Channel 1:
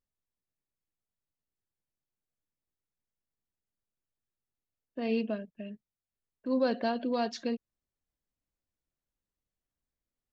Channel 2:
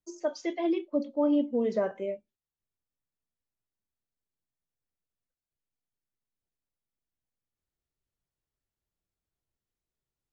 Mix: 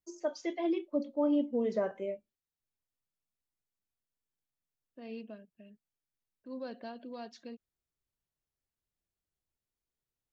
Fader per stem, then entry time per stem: -13.5, -3.5 dB; 0.00, 0.00 s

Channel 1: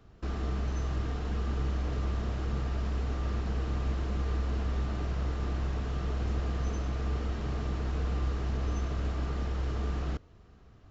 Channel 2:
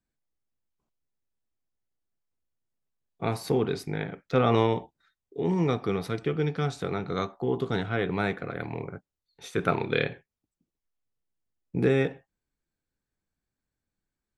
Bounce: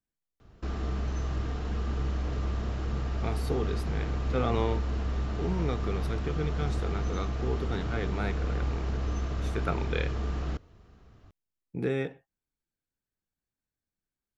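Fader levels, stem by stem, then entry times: +0.5, -6.5 dB; 0.40, 0.00 s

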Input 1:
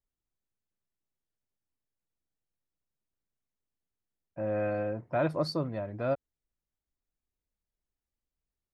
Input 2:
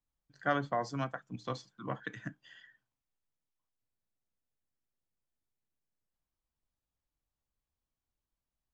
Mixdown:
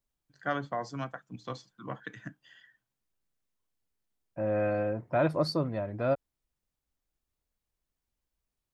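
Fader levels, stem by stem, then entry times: +2.0, -1.0 dB; 0.00, 0.00 s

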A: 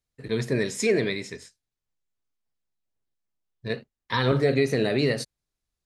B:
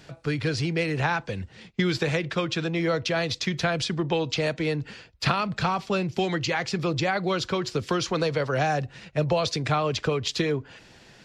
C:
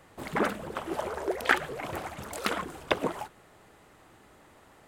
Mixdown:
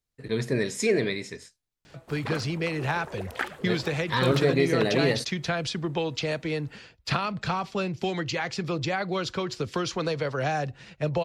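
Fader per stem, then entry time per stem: -1.0, -3.0, -7.0 dB; 0.00, 1.85, 1.90 s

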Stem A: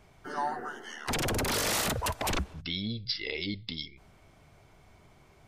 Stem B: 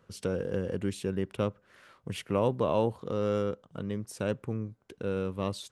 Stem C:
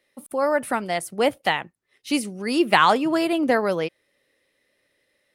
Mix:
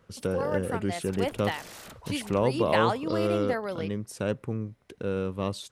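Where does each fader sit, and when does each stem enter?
-16.5, +2.0, -10.5 dB; 0.00, 0.00, 0.00 s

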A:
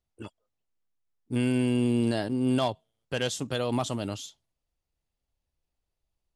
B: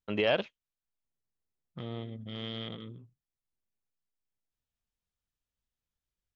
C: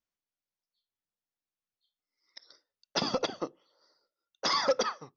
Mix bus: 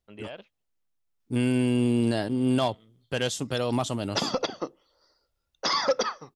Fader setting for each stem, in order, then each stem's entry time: +1.5, -14.0, +2.5 dB; 0.00, 0.00, 1.20 s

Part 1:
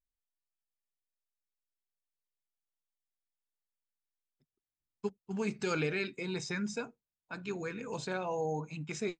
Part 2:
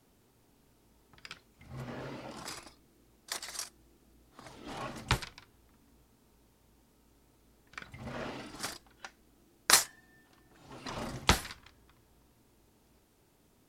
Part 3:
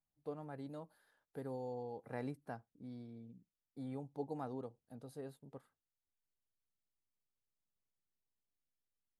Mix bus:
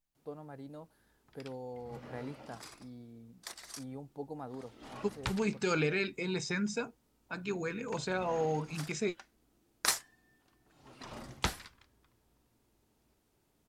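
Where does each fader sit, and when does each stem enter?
+2.0, -7.0, 0.0 dB; 0.00, 0.15, 0.00 s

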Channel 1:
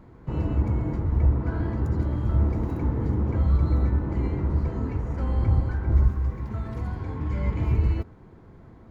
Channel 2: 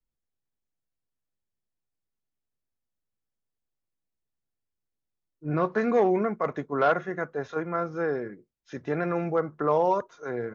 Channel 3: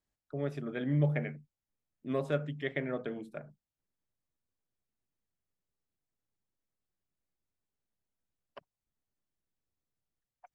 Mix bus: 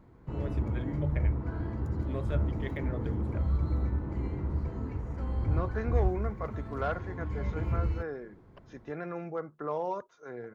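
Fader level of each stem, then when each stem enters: -7.5, -10.0, -5.5 dB; 0.00, 0.00, 0.00 s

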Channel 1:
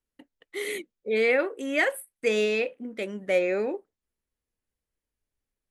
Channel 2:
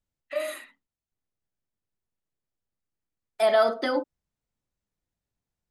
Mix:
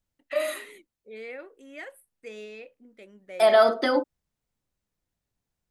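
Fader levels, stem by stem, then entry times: -17.0, +3.0 dB; 0.00, 0.00 s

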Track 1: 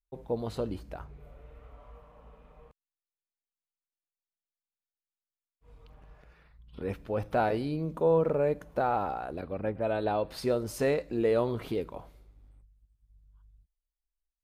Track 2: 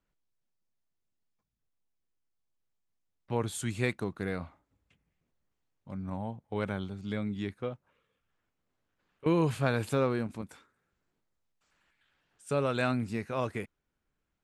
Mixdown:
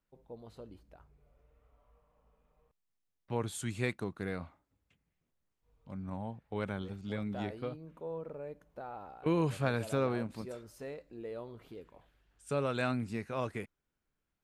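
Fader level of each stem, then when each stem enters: -16.5, -3.5 dB; 0.00, 0.00 s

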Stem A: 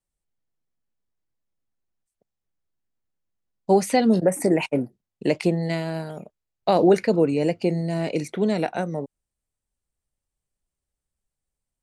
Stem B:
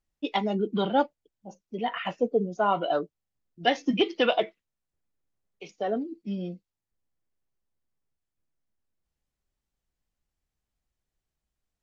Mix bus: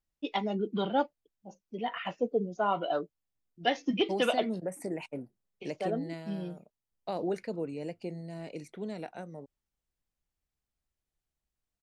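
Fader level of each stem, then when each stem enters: -16.0, -4.5 dB; 0.40, 0.00 s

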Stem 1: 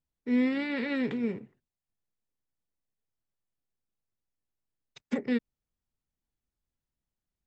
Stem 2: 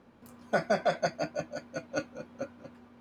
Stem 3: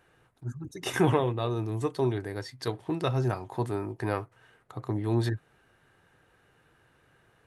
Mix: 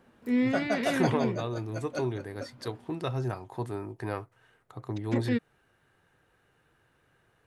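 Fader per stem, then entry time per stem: 0.0, -3.0, -4.0 dB; 0.00, 0.00, 0.00 s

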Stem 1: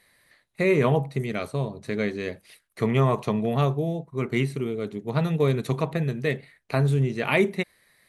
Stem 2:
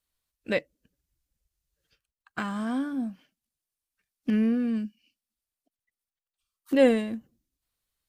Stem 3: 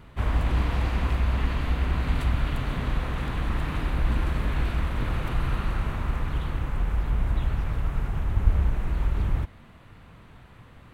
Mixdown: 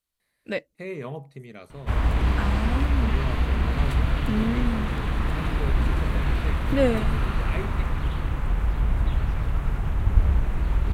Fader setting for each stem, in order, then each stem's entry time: -13.5, -2.0, +2.0 dB; 0.20, 0.00, 1.70 s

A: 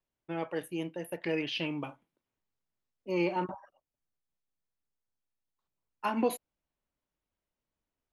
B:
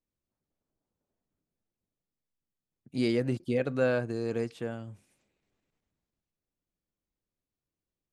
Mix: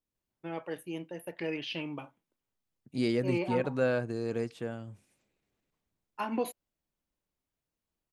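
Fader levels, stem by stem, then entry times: -3.0, -1.5 dB; 0.15, 0.00 s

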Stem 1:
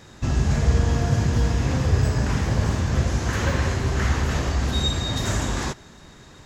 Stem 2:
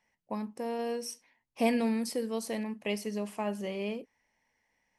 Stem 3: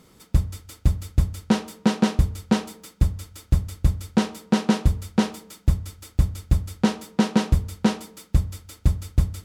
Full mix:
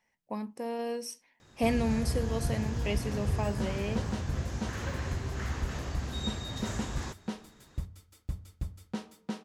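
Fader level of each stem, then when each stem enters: -12.5, -0.5, -16.5 dB; 1.40, 0.00, 2.10 s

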